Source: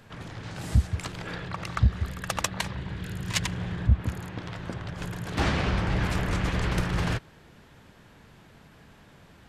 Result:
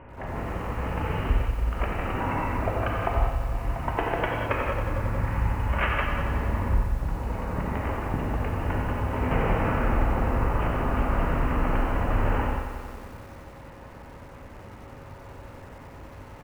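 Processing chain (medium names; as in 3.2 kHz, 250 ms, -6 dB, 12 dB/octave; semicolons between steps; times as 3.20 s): Chebyshev low-pass 5.1 kHz, order 6; tone controls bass -1 dB, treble -5 dB; compression 6:1, threshold -32 dBFS, peak gain reduction 14.5 dB; speed mistake 78 rpm record played at 45 rpm; delay 97 ms -18 dB; gated-style reverb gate 230 ms flat, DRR -1.5 dB; whistle 550 Hz -62 dBFS; bit-crushed delay 91 ms, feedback 80%, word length 9-bit, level -10 dB; trim +7 dB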